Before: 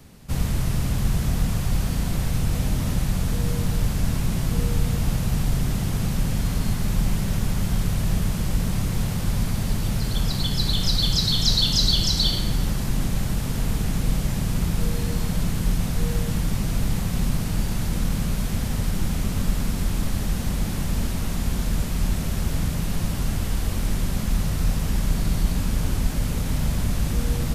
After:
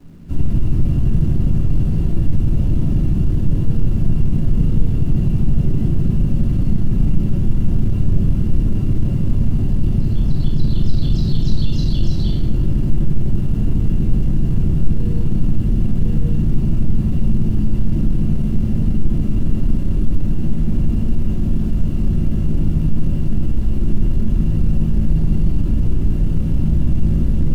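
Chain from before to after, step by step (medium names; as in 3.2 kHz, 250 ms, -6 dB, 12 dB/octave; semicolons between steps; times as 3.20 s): tilt EQ -2.5 dB/octave; small resonant body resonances 290/2800 Hz, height 12 dB, ringing for 20 ms; on a send: feedback echo behind a low-pass 61 ms, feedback 84%, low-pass 610 Hz, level -14.5 dB; on the sum: simulated room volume 480 m³, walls furnished, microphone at 3 m; in parallel at -5 dB: word length cut 6-bit, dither none; on the sum: peaking EQ 130 Hz +4.5 dB 1.5 oct; trim -17 dB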